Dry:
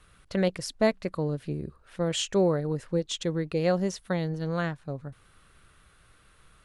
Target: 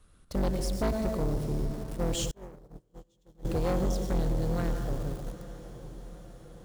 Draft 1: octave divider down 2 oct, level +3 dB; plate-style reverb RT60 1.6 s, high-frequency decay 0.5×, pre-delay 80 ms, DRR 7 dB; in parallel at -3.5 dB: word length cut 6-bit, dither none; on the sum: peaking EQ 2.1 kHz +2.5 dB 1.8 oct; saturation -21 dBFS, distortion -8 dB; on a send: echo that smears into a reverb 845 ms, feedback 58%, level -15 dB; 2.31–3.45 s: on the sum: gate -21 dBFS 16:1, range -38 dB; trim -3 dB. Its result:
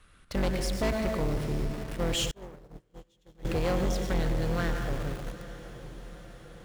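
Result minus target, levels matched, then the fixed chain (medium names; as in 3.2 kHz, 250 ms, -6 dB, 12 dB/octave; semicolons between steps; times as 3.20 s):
2 kHz band +7.5 dB
octave divider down 2 oct, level +3 dB; plate-style reverb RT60 1.6 s, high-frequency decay 0.5×, pre-delay 80 ms, DRR 7 dB; in parallel at -3.5 dB: word length cut 6-bit, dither none; on the sum: peaking EQ 2.1 kHz -9.5 dB 1.8 oct; saturation -21 dBFS, distortion -8 dB; on a send: echo that smears into a reverb 845 ms, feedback 58%, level -15 dB; 2.31–3.45 s: on the sum: gate -21 dBFS 16:1, range -38 dB; trim -3 dB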